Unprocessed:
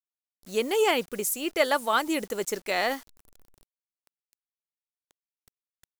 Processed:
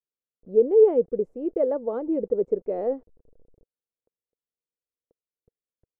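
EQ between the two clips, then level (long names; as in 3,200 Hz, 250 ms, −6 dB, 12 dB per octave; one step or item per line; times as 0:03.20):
low-pass with resonance 480 Hz, resonance Q 4.9
low-shelf EQ 320 Hz +9.5 dB
−6.5 dB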